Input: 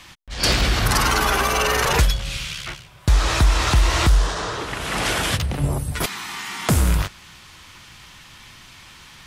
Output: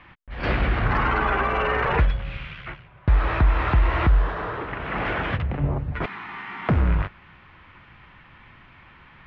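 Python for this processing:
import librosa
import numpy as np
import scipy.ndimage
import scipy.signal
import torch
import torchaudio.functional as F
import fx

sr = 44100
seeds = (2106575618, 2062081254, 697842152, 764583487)

y = scipy.signal.sosfilt(scipy.signal.butter(4, 2300.0, 'lowpass', fs=sr, output='sos'), x)
y = y * 10.0 ** (-2.0 / 20.0)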